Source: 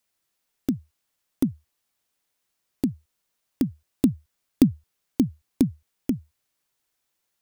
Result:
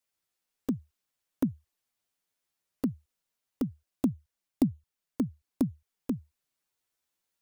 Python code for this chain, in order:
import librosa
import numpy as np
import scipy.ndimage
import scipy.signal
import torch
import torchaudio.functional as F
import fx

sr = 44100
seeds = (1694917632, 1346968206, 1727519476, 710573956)

y = fx.rider(x, sr, range_db=3, speed_s=2.0)
y = fx.env_flanger(y, sr, rest_ms=11.6, full_db=-20.5)
y = y * 10.0 ** (-6.0 / 20.0)